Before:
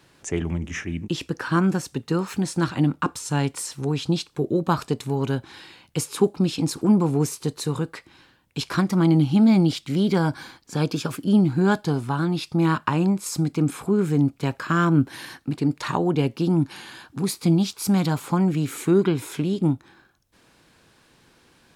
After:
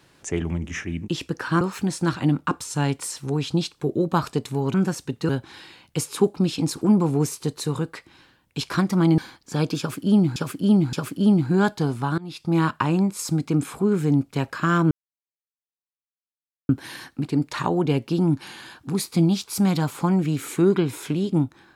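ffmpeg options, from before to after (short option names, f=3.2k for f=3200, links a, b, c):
-filter_complex "[0:a]asplit=9[a][b][c][d][e][f][g][h][i];[a]atrim=end=1.612[j];[b]atrim=start=2.158:end=5.292[k];[c]atrim=start=1.608:end=2.162[l];[d]atrim=start=5.288:end=9.182[m];[e]atrim=start=10.388:end=11.572[n];[f]atrim=start=10.998:end=11.572[o];[g]atrim=start=10.998:end=12.25,asetpts=PTS-STARTPTS,afade=t=out:st=1.248:d=0.004:c=hsin:silence=0.0749894[p];[h]atrim=start=12.25:end=14.98,asetpts=PTS-STARTPTS,afade=t=in:d=0.38:silence=0.0749894,afade=t=out:st=2.726:d=0.004:c=hsin,apad=pad_dur=1.78[q];[i]atrim=start=14.98,asetpts=PTS-STARTPTS,afade=t=in:d=0.004:c=hsin[r];[j][k]acrossfade=d=0.004:c1=hsin:c2=hsin[s];[s][l]acrossfade=d=0.004:c1=hsin:c2=hsin[t];[t][m]acrossfade=d=0.004:c1=hsin:c2=hsin[u];[u][n]acrossfade=d=0.004:c1=hsin:c2=hsin[v];[v][o]acrossfade=d=0.004:c1=hsin:c2=hsin[w];[p][q][r]concat=n=3:v=0:a=1[x];[w][x]acrossfade=d=0.004:c1=hsin:c2=hsin"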